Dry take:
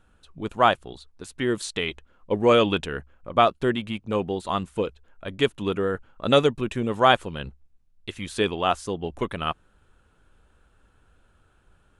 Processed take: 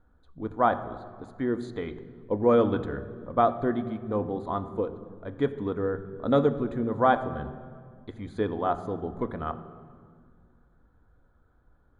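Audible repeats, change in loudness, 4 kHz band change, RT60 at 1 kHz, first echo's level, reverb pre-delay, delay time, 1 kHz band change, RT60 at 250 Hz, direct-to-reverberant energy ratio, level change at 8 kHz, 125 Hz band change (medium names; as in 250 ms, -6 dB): no echo, -3.5 dB, -19.0 dB, 1.9 s, no echo, 3 ms, no echo, -3.5 dB, 2.7 s, 9.0 dB, under -20 dB, -2.0 dB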